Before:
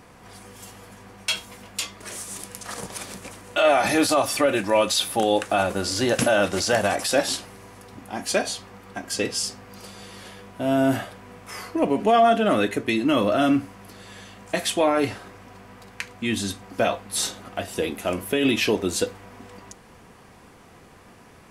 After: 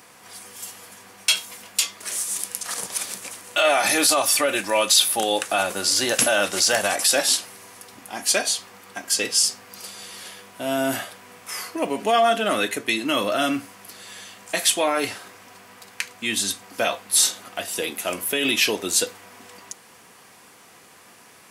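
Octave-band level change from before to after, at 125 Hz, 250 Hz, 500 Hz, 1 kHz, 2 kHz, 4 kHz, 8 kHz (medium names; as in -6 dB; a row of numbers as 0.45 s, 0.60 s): -9.5 dB, -5.5 dB, -2.5 dB, -0.5 dB, +3.0 dB, +6.0 dB, +9.0 dB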